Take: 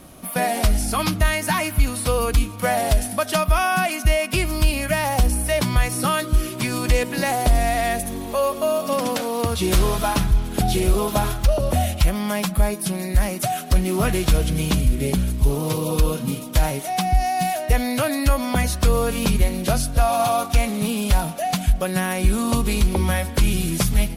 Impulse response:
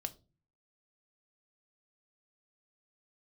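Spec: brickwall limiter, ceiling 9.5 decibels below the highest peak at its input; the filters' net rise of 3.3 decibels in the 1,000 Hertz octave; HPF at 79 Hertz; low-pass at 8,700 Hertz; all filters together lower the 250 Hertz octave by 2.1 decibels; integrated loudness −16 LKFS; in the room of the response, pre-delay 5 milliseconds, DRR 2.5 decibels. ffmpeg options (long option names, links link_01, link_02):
-filter_complex "[0:a]highpass=79,lowpass=8700,equalizer=frequency=250:width_type=o:gain=-3,equalizer=frequency=1000:width_type=o:gain=5,alimiter=limit=-14dB:level=0:latency=1,asplit=2[link_01][link_02];[1:a]atrim=start_sample=2205,adelay=5[link_03];[link_02][link_03]afir=irnorm=-1:irlink=0,volume=-1dB[link_04];[link_01][link_04]amix=inputs=2:normalize=0,volume=7dB"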